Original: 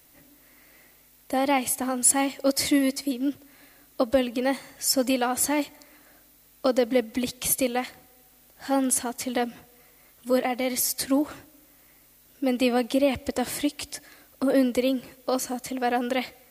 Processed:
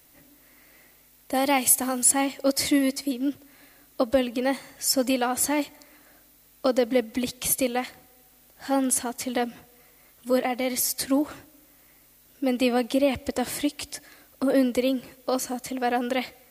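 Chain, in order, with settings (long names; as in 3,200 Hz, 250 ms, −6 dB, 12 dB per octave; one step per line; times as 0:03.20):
0:01.34–0:02.04: high-shelf EQ 4,300 Hz +9.5 dB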